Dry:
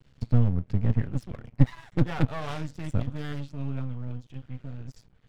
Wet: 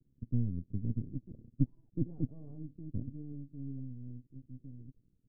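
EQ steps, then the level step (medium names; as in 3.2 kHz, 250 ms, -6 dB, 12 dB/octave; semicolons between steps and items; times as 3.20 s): four-pole ladder low-pass 360 Hz, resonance 45%; -3.5 dB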